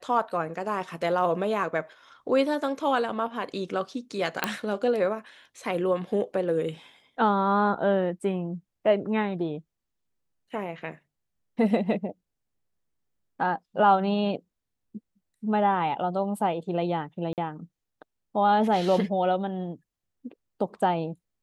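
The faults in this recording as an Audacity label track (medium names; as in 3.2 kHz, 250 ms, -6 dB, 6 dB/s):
4.440000	4.440000	pop -8 dBFS
17.330000	17.380000	dropout 48 ms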